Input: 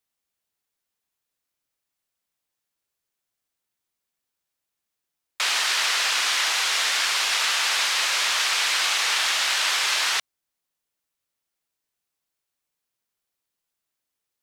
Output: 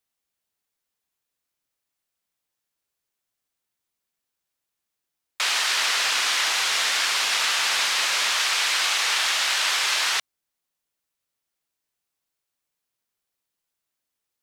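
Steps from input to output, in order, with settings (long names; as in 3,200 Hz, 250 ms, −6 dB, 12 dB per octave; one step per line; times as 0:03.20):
0:05.73–0:08.30: low-shelf EQ 210 Hz +8 dB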